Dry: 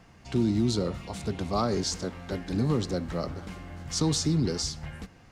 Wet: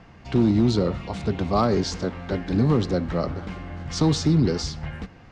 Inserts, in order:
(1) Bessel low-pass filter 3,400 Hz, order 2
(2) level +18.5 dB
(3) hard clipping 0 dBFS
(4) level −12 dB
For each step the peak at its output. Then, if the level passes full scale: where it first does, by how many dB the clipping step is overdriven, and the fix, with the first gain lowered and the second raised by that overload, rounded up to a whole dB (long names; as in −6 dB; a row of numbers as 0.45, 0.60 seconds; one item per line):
−14.0, +4.5, 0.0, −12.0 dBFS
step 2, 4.5 dB
step 2 +13.5 dB, step 4 −7 dB